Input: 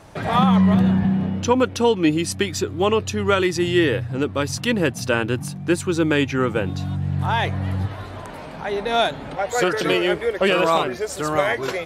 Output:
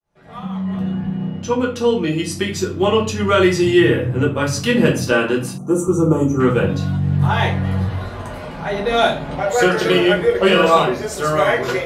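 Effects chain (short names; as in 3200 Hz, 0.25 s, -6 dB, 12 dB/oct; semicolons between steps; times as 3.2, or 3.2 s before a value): opening faded in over 3.43 s; 3.79–4.47 bell 4600 Hz -10 dB 0.77 oct; reverb RT60 0.40 s, pre-delay 5 ms, DRR -3.5 dB; 5.58–6.4 spectral gain 1400–5700 Hz -25 dB; 5.12–5.88 HPF 190 Hz 12 dB/oct; gain -1 dB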